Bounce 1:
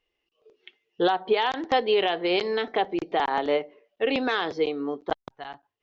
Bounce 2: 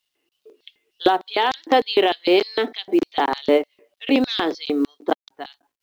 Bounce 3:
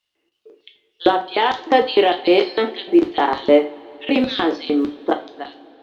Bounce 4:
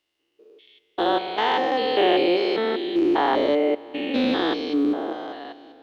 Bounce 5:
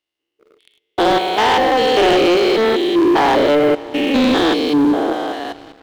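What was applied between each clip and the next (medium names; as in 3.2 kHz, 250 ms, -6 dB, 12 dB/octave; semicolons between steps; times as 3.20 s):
LFO high-pass square 3.3 Hz 280–4100 Hz; companded quantiser 8-bit; trim +4.5 dB
low-pass 3.3 kHz 6 dB/octave; reverberation, pre-delay 8 ms, DRR 4.5 dB; trim +2 dB
spectrogram pixelated in time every 200 ms
waveshaping leveller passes 3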